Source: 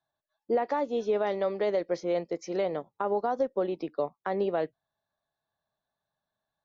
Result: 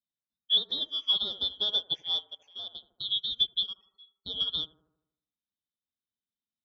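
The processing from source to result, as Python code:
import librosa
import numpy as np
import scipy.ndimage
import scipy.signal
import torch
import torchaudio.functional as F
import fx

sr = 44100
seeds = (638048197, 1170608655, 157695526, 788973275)

p1 = fx.band_shuffle(x, sr, order='2413')
p2 = scipy.signal.sosfilt(scipy.signal.butter(2, 43.0, 'highpass', fs=sr, output='sos'), p1)
p3 = fx.high_shelf(p2, sr, hz=3400.0, db=-6.0)
p4 = fx.quant_float(p3, sr, bits=6, at=(0.56, 1.61), fade=0.02)
p5 = fx.level_steps(p4, sr, step_db=11, at=(2.24, 2.75))
p6 = fx.stiff_resonator(p5, sr, f0_hz=390.0, decay_s=0.25, stiffness=0.03, at=(3.73, 4.21))
p7 = p6 + fx.echo_bbd(p6, sr, ms=78, stages=1024, feedback_pct=54, wet_db=-4.0, dry=0)
p8 = fx.upward_expand(p7, sr, threshold_db=-38.0, expansion=2.5)
y = F.gain(torch.from_numpy(p8), 6.0).numpy()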